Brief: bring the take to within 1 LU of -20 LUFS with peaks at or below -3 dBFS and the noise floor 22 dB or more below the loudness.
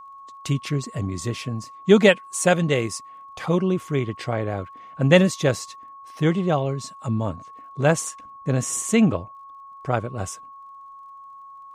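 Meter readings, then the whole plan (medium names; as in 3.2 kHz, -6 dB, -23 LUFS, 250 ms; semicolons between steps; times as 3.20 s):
tick rate 29 per s; steady tone 1.1 kHz; tone level -40 dBFS; loudness -23.0 LUFS; peak level -2.5 dBFS; loudness target -20.0 LUFS
-> de-click; band-stop 1.1 kHz, Q 30; trim +3 dB; peak limiter -3 dBFS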